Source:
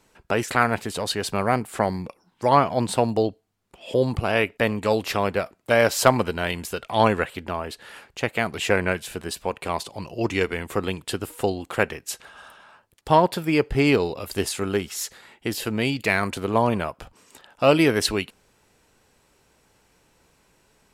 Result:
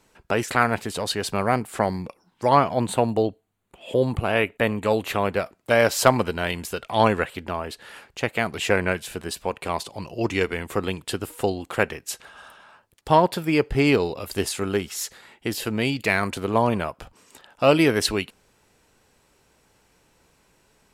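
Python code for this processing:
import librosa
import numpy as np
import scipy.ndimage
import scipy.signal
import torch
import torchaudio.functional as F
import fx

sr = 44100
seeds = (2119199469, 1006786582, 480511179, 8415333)

y = fx.peak_eq(x, sr, hz=5200.0, db=-13.5, octaves=0.33, at=(2.75, 5.33))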